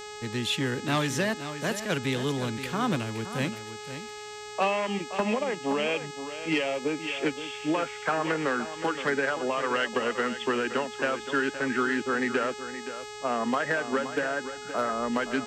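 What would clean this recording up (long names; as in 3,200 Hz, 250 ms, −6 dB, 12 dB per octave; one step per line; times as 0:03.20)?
click removal
hum removal 420.3 Hz, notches 20
echo removal 521 ms −11 dB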